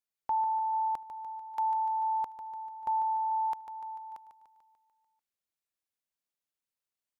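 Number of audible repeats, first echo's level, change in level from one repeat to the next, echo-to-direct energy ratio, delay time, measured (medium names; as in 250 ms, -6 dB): 6, -9.5 dB, -4.5 dB, -7.5 dB, 147 ms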